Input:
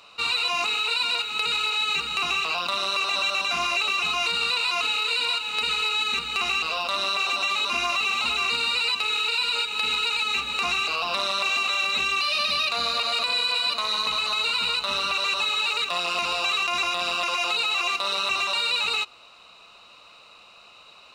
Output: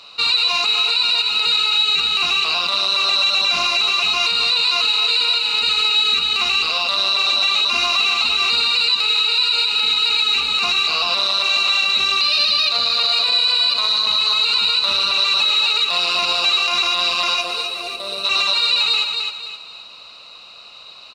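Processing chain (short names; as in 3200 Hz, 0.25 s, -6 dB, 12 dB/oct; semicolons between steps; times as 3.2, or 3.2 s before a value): high shelf 11000 Hz -3.5 dB; spectral gain 17.41–18.24, 740–8000 Hz -12 dB; bell 4300 Hz +11.5 dB 0.59 oct; on a send: feedback echo 0.262 s, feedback 37%, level -8 dB; on the sum: maximiser +11 dB; gain -7.5 dB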